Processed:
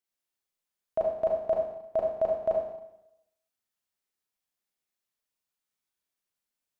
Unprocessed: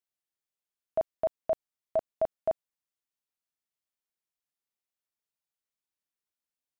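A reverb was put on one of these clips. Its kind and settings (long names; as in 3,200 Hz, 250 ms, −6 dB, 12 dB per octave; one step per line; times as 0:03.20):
four-comb reverb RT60 0.84 s, combs from 30 ms, DRR −2 dB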